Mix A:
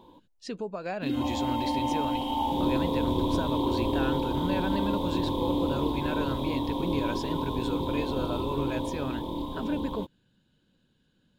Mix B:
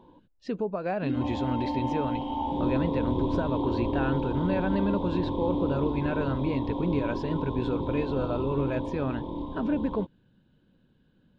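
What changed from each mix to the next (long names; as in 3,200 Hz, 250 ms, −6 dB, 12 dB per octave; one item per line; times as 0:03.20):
speech +6.0 dB
master: add head-to-tape spacing loss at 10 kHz 30 dB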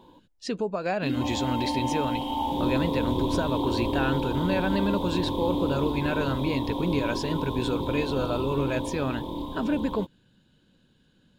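master: remove head-to-tape spacing loss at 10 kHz 30 dB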